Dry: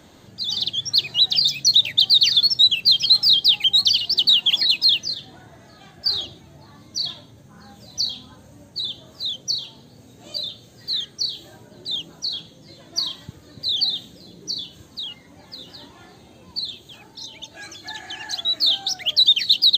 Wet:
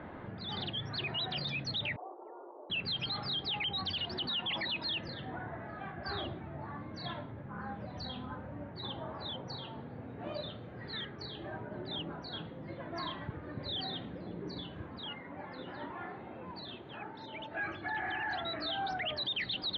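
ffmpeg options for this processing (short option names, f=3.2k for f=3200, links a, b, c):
-filter_complex "[0:a]asettb=1/sr,asplit=3[a][b][c];[a]atrim=end=1.964[d];[b]atrim=start=1.96:end=2.7,asetpts=PTS-STARTPTS,afade=t=in:d=0.004:c=qsin,afade=t=out:st=0.736:d=0.004:c=qsin,asuperpass=centerf=610:order=12:qfactor=0.78[e];[c]atrim=start=2.696[f];[d][e]acrossfade=d=0.004:c1=hsin:c2=qsin[g];[g][f]acrossfade=d=0.004:c1=qsin:c2=hsin,asettb=1/sr,asplit=3[h][i][j];[h]atrim=end=8.834[k];[i]atrim=start=8.83:end=9.58,asetpts=PTS-STARTPTS,afade=t=in:d=0.004:c=qsin,afade=t=out:st=0.746:d=0.004:c=qsin,equalizer=f=910:t=o:w=0.64:g=7.5[l];[j]atrim=start=9.576[m];[k][l]acrossfade=d=0.004:c1=hsin:c2=qsin[n];[n][m]acrossfade=d=0.004:c1=qsin:c2=hsin,asettb=1/sr,asplit=3[o][p][q];[o]atrim=end=15.094[r];[p]atrim=start=15.09:end=17.58,asetpts=PTS-STARTPTS,afade=t=in:d=0.004:c=qsin,afade=t=out:st=2.486:d=0.004:c=qsin,highpass=f=170:p=1[s];[q]atrim=start=17.576[t];[r][s]acrossfade=d=0.004:c1=hsin:c2=qsin[u];[u][t]acrossfade=d=0.004:c1=qsin:c2=hsin,lowpass=f=2.1k:w=0.5412,lowpass=f=2.1k:w=1.3066,equalizer=f=1.2k:w=0.57:g=4.5,alimiter=level_in=6.5dB:limit=-24dB:level=0:latency=1:release=11,volume=-6.5dB,volume=2dB"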